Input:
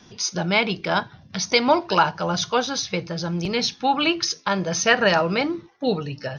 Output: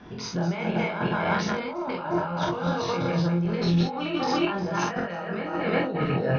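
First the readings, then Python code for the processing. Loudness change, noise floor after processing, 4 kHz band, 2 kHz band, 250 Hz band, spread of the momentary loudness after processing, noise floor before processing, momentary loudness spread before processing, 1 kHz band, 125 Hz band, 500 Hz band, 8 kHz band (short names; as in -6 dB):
-4.5 dB, -35 dBFS, -11.5 dB, -7.5 dB, -0.5 dB, 6 LU, -51 dBFS, 9 LU, -5.5 dB, +3.0 dB, -4.0 dB, -15.0 dB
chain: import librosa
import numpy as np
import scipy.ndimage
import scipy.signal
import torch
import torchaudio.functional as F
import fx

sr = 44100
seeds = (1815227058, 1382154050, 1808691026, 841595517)

p1 = fx.reverse_delay_fb(x, sr, ms=178, feedback_pct=58, wet_db=-4.5)
p2 = scipy.signal.sosfilt(scipy.signal.butter(2, 1900.0, 'lowpass', fs=sr, output='sos'), p1)
p3 = fx.over_compress(p2, sr, threshold_db=-29.0, ratio=-1.0)
p4 = p3 + fx.room_early_taps(p3, sr, ms=(23, 46, 65), db=(-4.5, -3.0, -9.5), dry=0)
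y = p4 * librosa.db_to_amplitude(-1.5)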